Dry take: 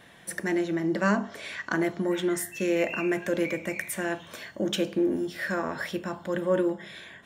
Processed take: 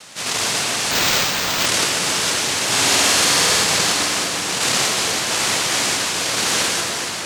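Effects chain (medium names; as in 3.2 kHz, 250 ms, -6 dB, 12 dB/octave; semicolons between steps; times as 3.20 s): every event in the spectrogram widened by 240 ms; high-pass 1 kHz 6 dB/octave; noise-vocoded speech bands 1; in parallel at +1 dB: compression, threshold -34 dBFS, peak gain reduction 12.5 dB; 2.67–3.64 s: on the sum: flutter echo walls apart 8.7 m, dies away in 1.2 s; on a send at -1.5 dB: reverberation RT60 4.5 s, pre-delay 109 ms; 0.91–1.66 s: on the sum: careless resampling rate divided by 4×, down none, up hold; trim +3 dB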